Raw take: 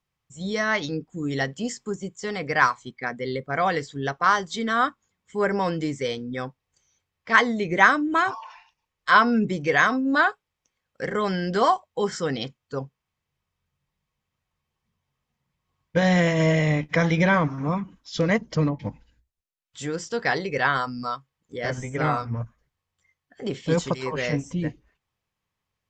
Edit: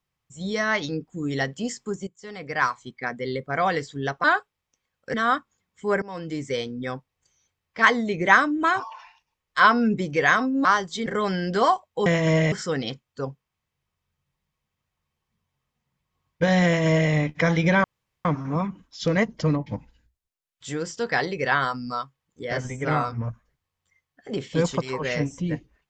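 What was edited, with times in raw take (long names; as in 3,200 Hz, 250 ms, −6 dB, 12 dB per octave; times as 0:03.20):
0:02.07–0:03.01: fade in, from −16 dB
0:04.24–0:04.65: swap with 0:10.16–0:11.06
0:05.53–0:06.03: fade in, from −21.5 dB
0:16.19–0:16.65: duplicate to 0:12.06
0:17.38: splice in room tone 0.41 s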